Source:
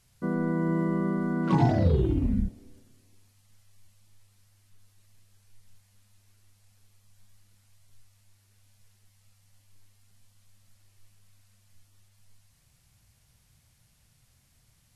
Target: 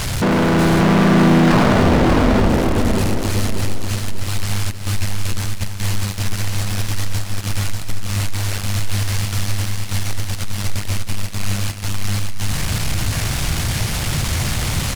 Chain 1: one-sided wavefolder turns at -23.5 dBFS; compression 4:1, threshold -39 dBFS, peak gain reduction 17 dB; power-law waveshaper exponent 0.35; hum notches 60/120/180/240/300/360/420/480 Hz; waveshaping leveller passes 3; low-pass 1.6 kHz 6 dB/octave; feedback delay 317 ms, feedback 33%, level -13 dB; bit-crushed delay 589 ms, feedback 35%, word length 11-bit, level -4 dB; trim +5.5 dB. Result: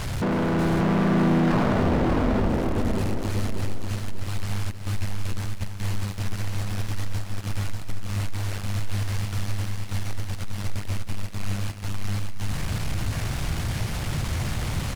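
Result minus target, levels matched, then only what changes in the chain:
compression: peak gain reduction +8 dB; 4 kHz band -4.0 dB
change: compression 4:1, threshold -28.5 dBFS, peak gain reduction 9.5 dB; change: low-pass 4.2 kHz 6 dB/octave

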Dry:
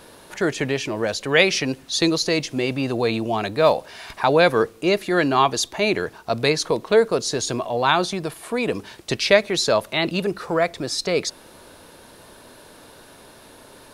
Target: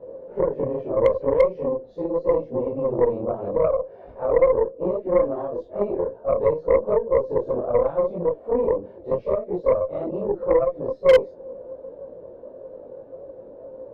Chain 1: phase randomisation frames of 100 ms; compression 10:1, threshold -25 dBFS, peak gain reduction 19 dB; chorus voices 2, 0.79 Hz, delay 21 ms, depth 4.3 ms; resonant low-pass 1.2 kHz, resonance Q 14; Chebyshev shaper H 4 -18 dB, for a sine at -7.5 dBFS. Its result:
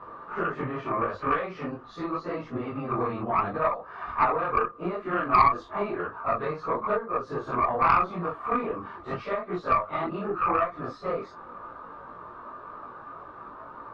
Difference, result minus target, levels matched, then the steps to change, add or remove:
1 kHz band +13.0 dB
change: resonant low-pass 530 Hz, resonance Q 14

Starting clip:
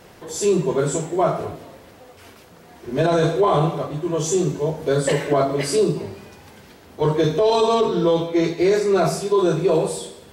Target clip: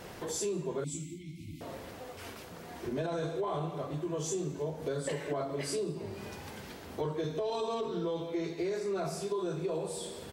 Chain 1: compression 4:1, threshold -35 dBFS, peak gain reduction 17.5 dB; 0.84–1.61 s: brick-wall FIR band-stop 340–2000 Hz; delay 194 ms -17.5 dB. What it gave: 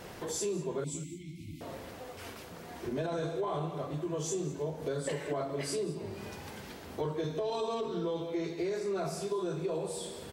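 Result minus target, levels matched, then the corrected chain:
echo-to-direct +10 dB
compression 4:1, threshold -35 dBFS, peak gain reduction 17.5 dB; 0.84–1.61 s: brick-wall FIR band-stop 340–2000 Hz; delay 194 ms -27.5 dB

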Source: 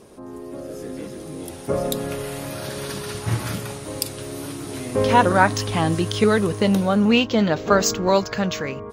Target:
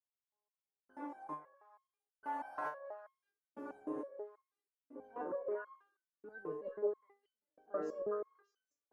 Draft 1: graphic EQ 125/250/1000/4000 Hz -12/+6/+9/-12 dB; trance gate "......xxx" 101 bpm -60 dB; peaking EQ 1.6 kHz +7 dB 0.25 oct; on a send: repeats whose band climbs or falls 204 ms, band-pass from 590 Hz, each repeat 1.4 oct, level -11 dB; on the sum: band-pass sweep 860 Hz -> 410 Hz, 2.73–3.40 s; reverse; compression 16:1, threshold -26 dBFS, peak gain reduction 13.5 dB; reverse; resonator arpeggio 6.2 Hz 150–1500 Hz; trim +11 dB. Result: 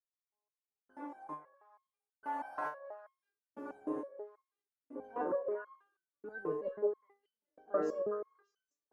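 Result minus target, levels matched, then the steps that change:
compression: peak gain reduction -6 dB
change: compression 16:1, threshold -32.5 dBFS, peak gain reduction 19.5 dB

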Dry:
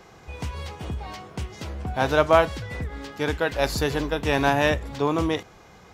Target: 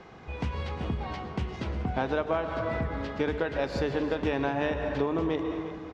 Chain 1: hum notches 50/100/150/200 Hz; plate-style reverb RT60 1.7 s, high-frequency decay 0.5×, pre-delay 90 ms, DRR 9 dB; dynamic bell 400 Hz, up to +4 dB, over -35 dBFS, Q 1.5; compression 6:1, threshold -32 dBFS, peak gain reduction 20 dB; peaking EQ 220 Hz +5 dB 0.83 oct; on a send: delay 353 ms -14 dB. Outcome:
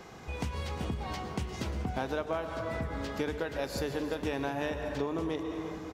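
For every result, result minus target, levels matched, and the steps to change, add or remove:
compression: peak gain reduction +5 dB; 4 kHz band +3.5 dB
change: compression 6:1, threshold -26 dBFS, peak gain reduction 15 dB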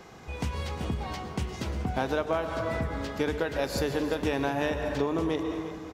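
4 kHz band +3.5 dB
add after compression: low-pass 3.5 kHz 12 dB/octave

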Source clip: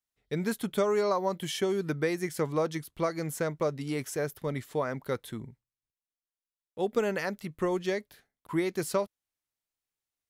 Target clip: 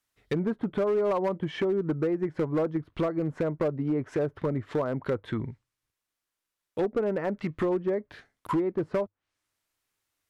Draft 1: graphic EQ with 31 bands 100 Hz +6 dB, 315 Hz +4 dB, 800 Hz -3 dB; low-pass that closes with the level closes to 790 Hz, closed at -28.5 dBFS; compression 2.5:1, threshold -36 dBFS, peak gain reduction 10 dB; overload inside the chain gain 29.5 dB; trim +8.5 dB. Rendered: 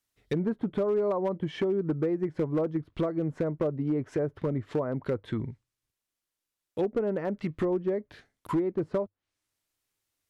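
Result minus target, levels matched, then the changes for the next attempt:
1 kHz band -2.5 dB
add after compression: peaking EQ 1.3 kHz +5 dB 2.1 oct

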